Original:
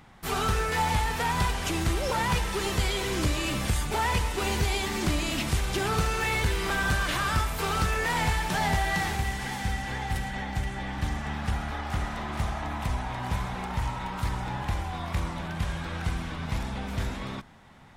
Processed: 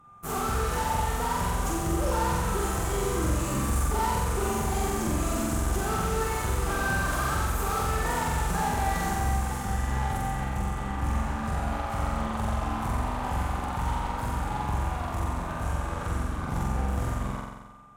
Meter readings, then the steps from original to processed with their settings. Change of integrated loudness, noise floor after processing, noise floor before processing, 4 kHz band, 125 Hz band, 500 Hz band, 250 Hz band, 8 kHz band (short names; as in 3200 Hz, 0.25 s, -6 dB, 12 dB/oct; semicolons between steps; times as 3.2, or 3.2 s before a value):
0.0 dB, -34 dBFS, -36 dBFS, -7.5 dB, +0.5 dB, +1.0 dB, +1.5 dB, +1.5 dB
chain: band shelf 3100 Hz -15 dB; limiter -21.5 dBFS, peak gain reduction 4.5 dB; whine 1200 Hz -45 dBFS; one-sided clip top -28.5 dBFS; added harmonics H 7 -20 dB, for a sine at -22.5 dBFS; flutter echo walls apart 7.7 m, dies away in 1.2 s